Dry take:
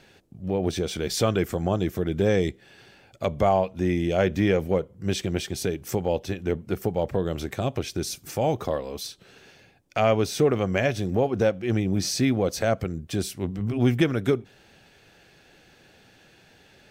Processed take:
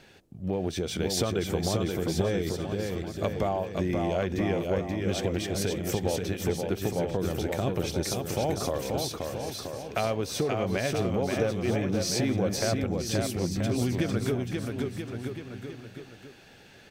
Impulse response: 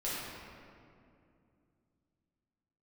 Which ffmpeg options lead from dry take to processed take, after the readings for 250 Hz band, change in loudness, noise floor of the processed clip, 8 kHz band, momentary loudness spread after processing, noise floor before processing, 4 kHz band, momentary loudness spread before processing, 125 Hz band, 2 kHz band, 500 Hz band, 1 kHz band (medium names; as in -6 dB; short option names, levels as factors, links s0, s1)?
-3.0 dB, -3.5 dB, -52 dBFS, +0.5 dB, 7 LU, -56 dBFS, -0.5 dB, 8 LU, -2.5 dB, -3.5 dB, -4.0 dB, -4.5 dB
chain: -af "acompressor=threshold=0.0562:ratio=6,aecho=1:1:530|980.5|1363|1689|1966:0.631|0.398|0.251|0.158|0.1"